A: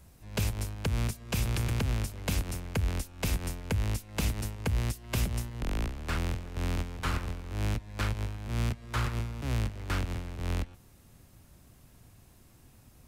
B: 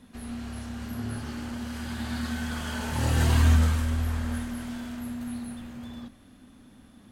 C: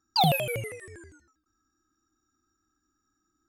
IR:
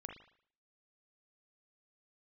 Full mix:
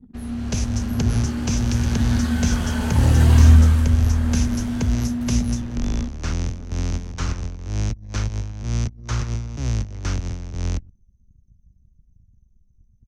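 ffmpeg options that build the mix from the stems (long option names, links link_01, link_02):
-filter_complex "[0:a]lowpass=frequency=6100:width_type=q:width=6.6,adelay=150,volume=-4dB[link_01];[1:a]volume=0.5dB[link_02];[link_01][link_02]amix=inputs=2:normalize=0,anlmdn=0.00631,lowshelf=frequency=400:gain=9,dynaudnorm=framelen=320:gausssize=3:maxgain=3dB"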